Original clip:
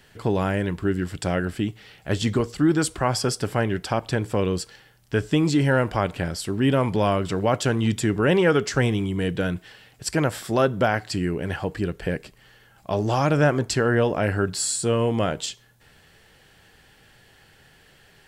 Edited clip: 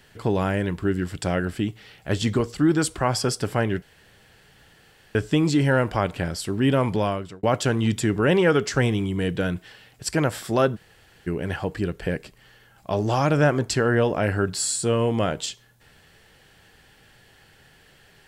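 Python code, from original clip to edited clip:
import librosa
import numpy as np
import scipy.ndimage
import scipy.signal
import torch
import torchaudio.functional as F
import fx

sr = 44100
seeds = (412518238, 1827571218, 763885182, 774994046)

y = fx.edit(x, sr, fx.room_tone_fill(start_s=3.82, length_s=1.33),
    fx.fade_out_span(start_s=6.92, length_s=0.51),
    fx.room_tone_fill(start_s=10.76, length_s=0.51, crossfade_s=0.02), tone=tone)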